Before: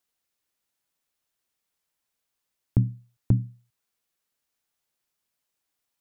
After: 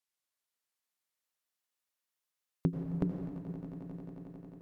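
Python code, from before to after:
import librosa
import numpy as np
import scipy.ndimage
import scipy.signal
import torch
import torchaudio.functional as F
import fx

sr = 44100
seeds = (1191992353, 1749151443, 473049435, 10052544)

p1 = fx.speed_glide(x, sr, from_pct=70, to_pct=190)
p2 = fx.low_shelf(p1, sr, hz=490.0, db=-9.5)
p3 = p2 + fx.echo_swell(p2, sr, ms=89, loudest=8, wet_db=-13.5, dry=0)
p4 = fx.rev_plate(p3, sr, seeds[0], rt60_s=2.5, hf_ratio=0.6, predelay_ms=75, drr_db=1.0)
y = fx.upward_expand(p4, sr, threshold_db=-44.0, expansion=1.5)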